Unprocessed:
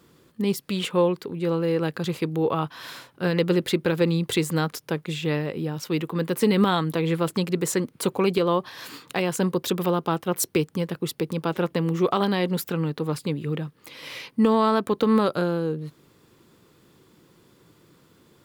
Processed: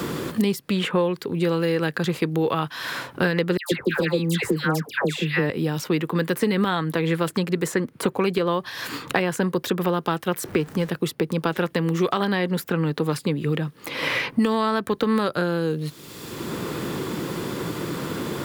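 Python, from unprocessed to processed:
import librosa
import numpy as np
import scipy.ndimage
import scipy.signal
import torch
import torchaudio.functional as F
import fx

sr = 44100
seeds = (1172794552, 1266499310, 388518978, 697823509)

y = fx.dispersion(x, sr, late='lows', ms=144.0, hz=1300.0, at=(3.57, 5.5))
y = fx.zero_step(y, sr, step_db=-38.0, at=(10.42, 10.89))
y = fx.dynamic_eq(y, sr, hz=1700.0, q=2.6, threshold_db=-46.0, ratio=4.0, max_db=7)
y = fx.band_squash(y, sr, depth_pct=100)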